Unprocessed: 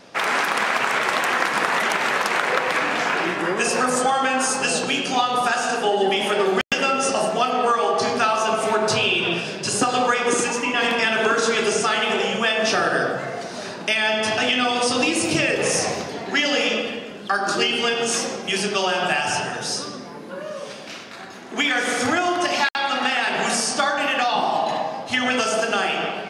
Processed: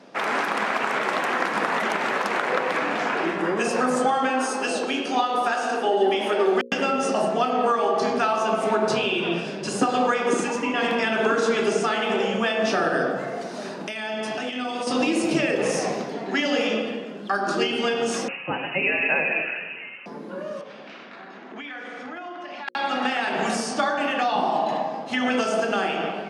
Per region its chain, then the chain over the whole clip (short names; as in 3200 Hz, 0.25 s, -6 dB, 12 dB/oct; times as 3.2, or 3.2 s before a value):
4.29–6.63 HPF 240 Hz 24 dB/oct + notch 7200 Hz, Q 13
13.16–14.87 high shelf 9900 Hz +10.5 dB + compressor 10:1, threshold -22 dBFS
18.28–20.06 resonant high-pass 710 Hz, resonance Q 2.4 + inverted band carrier 3300 Hz
20.61–22.68 LPF 3000 Hz + compressor 3:1, threshold -35 dBFS + tilt shelf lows -4 dB, about 850 Hz
whole clip: HPF 180 Hz 24 dB/oct; tilt -2.5 dB/oct; notches 60/120/180/240/300/360/420/480/540 Hz; gain -2.5 dB